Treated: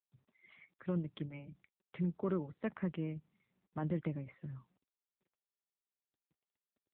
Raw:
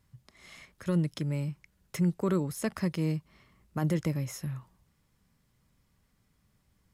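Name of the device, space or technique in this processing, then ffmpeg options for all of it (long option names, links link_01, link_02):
mobile call with aggressive noise cancelling: -af "highpass=150,afftdn=noise_reduction=27:noise_floor=-52,volume=-5.5dB" -ar 8000 -c:a libopencore_amrnb -b:a 7950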